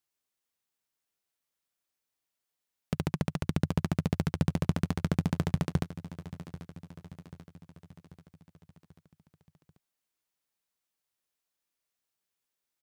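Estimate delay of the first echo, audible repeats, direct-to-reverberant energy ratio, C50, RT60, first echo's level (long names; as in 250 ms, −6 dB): 788 ms, 4, no reverb audible, no reverb audible, no reverb audible, −15.0 dB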